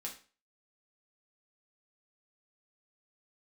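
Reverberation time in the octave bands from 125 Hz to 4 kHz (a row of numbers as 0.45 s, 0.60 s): 0.35 s, 0.40 s, 0.35 s, 0.35 s, 0.35 s, 0.35 s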